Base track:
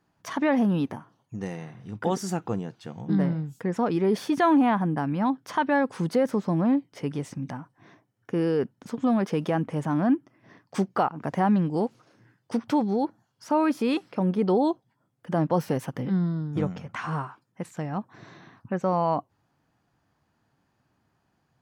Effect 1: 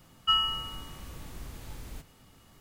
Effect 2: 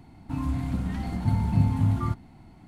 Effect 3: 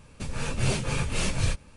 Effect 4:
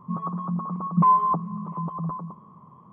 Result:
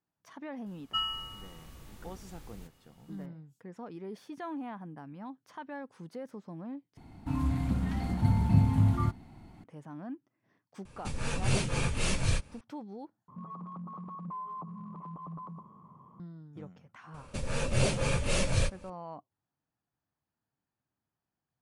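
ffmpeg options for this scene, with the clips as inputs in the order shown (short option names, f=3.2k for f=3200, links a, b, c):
-filter_complex "[3:a]asplit=2[a][b];[0:a]volume=-19dB[c];[4:a]acompressor=threshold=-34dB:ratio=5:attack=0.37:release=104:knee=6:detection=peak[d];[b]equalizer=f=560:w=5.4:g=10.5[e];[c]asplit=3[f][g][h];[f]atrim=end=6.974[i];[2:a]atrim=end=2.67,asetpts=PTS-STARTPTS,volume=-1.5dB[j];[g]atrim=start=9.636:end=13.284[k];[d]atrim=end=2.92,asetpts=PTS-STARTPTS,volume=-5.5dB[l];[h]atrim=start=16.196[m];[1:a]atrim=end=2.6,asetpts=PTS-STARTPTS,volume=-7dB,afade=t=in:d=0.004:c=hsin,afade=t=out:st=2.596:d=0.004:c=hsin,adelay=660[n];[a]atrim=end=1.76,asetpts=PTS-STARTPTS,volume=-2.5dB,afade=t=in:d=0.004:c=hsin,afade=t=out:st=1.756:d=0.004:c=hsin,adelay=10850[o];[e]atrim=end=1.76,asetpts=PTS-STARTPTS,volume=-2dB,afade=t=in:d=0.004:c=hsin,afade=t=out:st=1.756:d=0.004:c=hsin,adelay=17140[p];[i][j]acrossfade=d=0.004:c1=hsin:c2=hsin[q];[q][k]acrossfade=d=0.004:c1=hsin:c2=hsin[r];[r][l]acrossfade=d=0.004:c1=hsin:c2=hsin[s];[s][m]acrossfade=d=0.004:c1=hsin:c2=hsin[t];[t][n][o][p]amix=inputs=4:normalize=0"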